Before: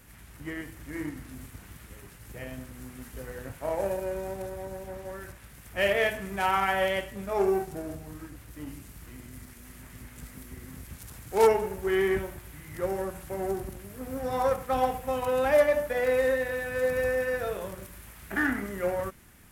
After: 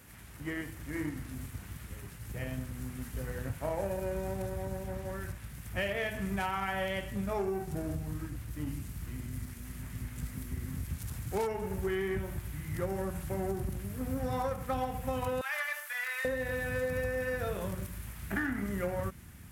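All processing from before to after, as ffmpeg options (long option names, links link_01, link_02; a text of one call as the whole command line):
ffmpeg -i in.wav -filter_complex "[0:a]asettb=1/sr,asplit=3[link_01][link_02][link_03];[link_01]atrim=end=15.414[link_04];[link_02]atrim=start=15.41:end=16.25,asetpts=PTS-STARTPTS,afade=type=in:duration=0.004:curve=qsin,afade=type=out:start_time=0.836:duration=0.004:curve=qsin,acrossover=split=3000[link_05][link_06];[link_06]acompressor=threshold=-50dB:ratio=4:attack=1:release=60[link_07];[link_05][link_07]amix=inputs=2:normalize=0,highpass=frequency=1200:width=0.5412,highpass=frequency=1200:width=1.3066,highshelf=frequency=4100:gain=8[link_08];[link_03]atrim=start=16.246[link_09];[link_04][link_08]acrossfade=duration=0.004:curve1=hsin:curve2=qsin[link_10];[link_10][link_09]acrossfade=duration=0.004:curve1=qsin:curve2=hsin,highpass=64,asubboost=boost=3:cutoff=220,acompressor=threshold=-29dB:ratio=12" out.wav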